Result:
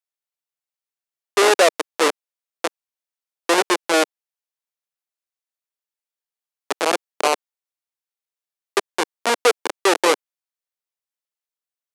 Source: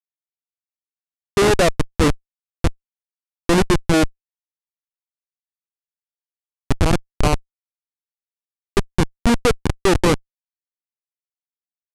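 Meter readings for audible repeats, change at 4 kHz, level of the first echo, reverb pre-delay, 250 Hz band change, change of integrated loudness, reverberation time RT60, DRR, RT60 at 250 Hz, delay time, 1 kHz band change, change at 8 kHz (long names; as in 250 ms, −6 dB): no echo audible, +3.0 dB, no echo audible, no reverb audible, −8.0 dB, −0.5 dB, no reverb audible, no reverb audible, no reverb audible, no echo audible, +3.0 dB, +3.0 dB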